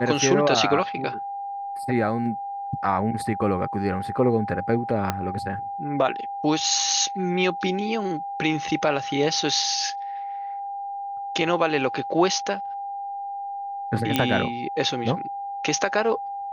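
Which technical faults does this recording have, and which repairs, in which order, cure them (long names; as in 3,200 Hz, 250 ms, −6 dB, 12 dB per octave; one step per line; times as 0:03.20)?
whistle 800 Hz −29 dBFS
0:05.10: click −8 dBFS
0:14.16: click −6 dBFS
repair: click removal
notch filter 800 Hz, Q 30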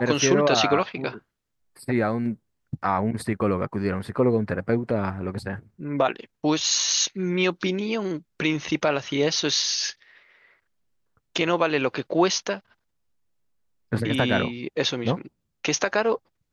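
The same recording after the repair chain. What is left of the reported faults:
0:05.10: click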